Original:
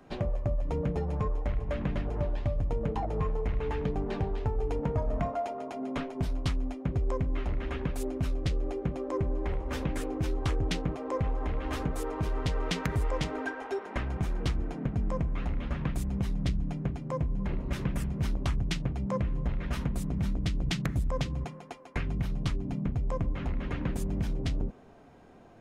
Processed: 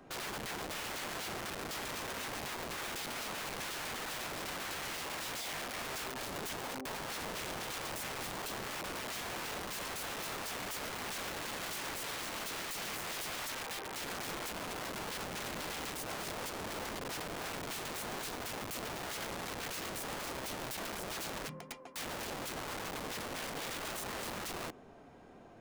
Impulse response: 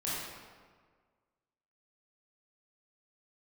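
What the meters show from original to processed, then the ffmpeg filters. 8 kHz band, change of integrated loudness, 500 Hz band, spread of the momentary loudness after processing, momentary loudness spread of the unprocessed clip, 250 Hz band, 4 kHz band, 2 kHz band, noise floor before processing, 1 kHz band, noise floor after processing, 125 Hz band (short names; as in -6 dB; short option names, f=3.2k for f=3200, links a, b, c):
+8.5 dB, -6.5 dB, -8.5 dB, 2 LU, 3 LU, -12.5 dB, +4.5 dB, +3.0 dB, -47 dBFS, -1.5 dB, -49 dBFS, -20.5 dB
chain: -af "aeval=exprs='(mod(59.6*val(0)+1,2)-1)/59.6':c=same,lowshelf=f=160:g=-5.5"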